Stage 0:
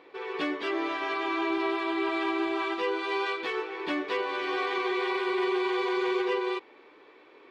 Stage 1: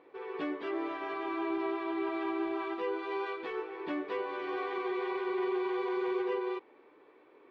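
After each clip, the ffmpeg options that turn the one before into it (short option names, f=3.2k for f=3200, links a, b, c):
-af "lowpass=f=1.1k:p=1,volume=-3.5dB"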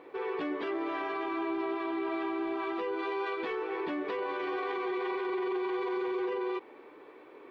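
-af "alimiter=level_in=10.5dB:limit=-24dB:level=0:latency=1:release=46,volume=-10.5dB,volume=8dB"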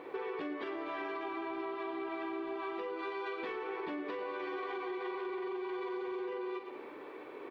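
-filter_complex "[0:a]asplit=2[a][b];[b]aecho=0:1:44|113|187:0.335|0.282|0.106[c];[a][c]amix=inputs=2:normalize=0,acompressor=threshold=-40dB:ratio=10,volume=4dB"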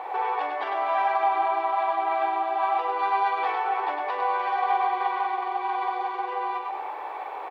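-af "highpass=f=790:t=q:w=8.2,aecho=1:1:101:0.562,volume=7.5dB"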